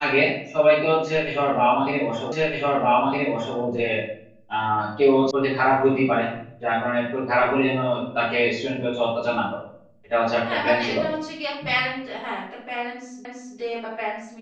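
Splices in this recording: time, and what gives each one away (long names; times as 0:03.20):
0:02.32: the same again, the last 1.26 s
0:05.31: cut off before it has died away
0:13.25: the same again, the last 0.33 s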